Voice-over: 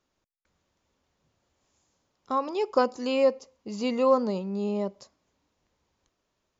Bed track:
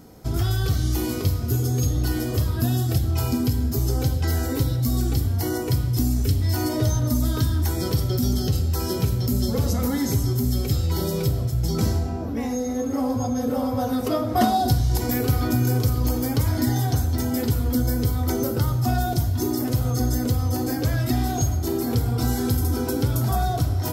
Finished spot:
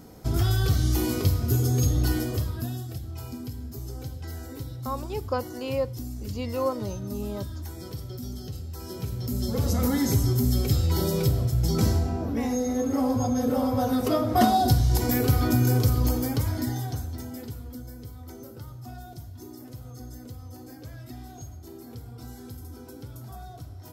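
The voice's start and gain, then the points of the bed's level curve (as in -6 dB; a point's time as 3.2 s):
2.55 s, -5.5 dB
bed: 2.11 s -0.5 dB
2.93 s -14 dB
8.74 s -14 dB
9.83 s -0.5 dB
16 s -0.5 dB
17.9 s -19 dB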